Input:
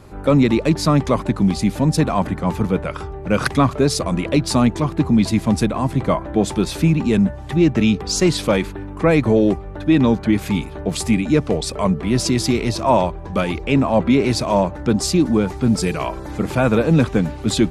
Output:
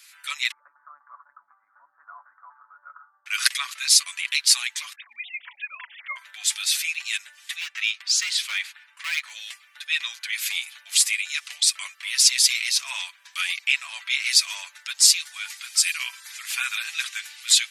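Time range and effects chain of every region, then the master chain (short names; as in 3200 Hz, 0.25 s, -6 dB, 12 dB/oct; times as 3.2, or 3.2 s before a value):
0.51–3.26 doubler 14 ms -12 dB + compressor, threshold -15 dBFS + steep low-pass 1400 Hz 72 dB/oct
4.95–6.16 sine-wave speech + notches 50/100/150/200/250 Hz + dynamic EQ 570 Hz, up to +5 dB, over -34 dBFS, Q 1.5
7.6–9.31 LPF 2800 Hz 6 dB/oct + hard clip -8.5 dBFS
whole clip: inverse Chebyshev high-pass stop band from 430 Hz, stop band 70 dB; tilt +2 dB/oct; comb 7 ms, depth 57%; gain +2 dB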